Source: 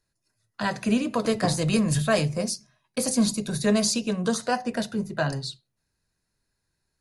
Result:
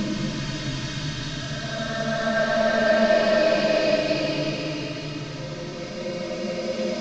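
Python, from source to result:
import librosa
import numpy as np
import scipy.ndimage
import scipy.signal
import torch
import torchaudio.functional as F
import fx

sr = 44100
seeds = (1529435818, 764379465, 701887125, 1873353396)

y = fx.delta_mod(x, sr, bps=32000, step_db=-31.0)
y = fx.peak_eq(y, sr, hz=780.0, db=-8.0, octaves=0.27)
y = y + 0.71 * np.pad(y, (int(3.2 * sr / 1000.0), 0))[:len(y)]
y = fx.paulstretch(y, sr, seeds[0], factor=13.0, window_s=0.25, from_s=1.89)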